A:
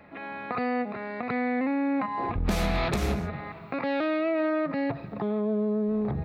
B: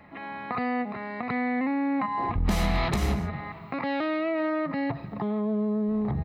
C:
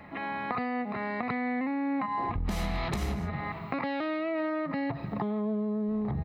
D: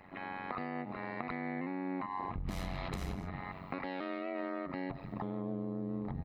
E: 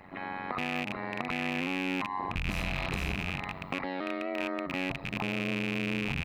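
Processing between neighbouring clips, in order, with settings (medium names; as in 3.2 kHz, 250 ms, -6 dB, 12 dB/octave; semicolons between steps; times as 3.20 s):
comb 1 ms, depth 36%
compression 5:1, threshold -32 dBFS, peak gain reduction 11 dB; trim +3.5 dB
AM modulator 93 Hz, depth 80%; trim -4 dB
rattle on loud lows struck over -43 dBFS, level -26 dBFS; trim +4.5 dB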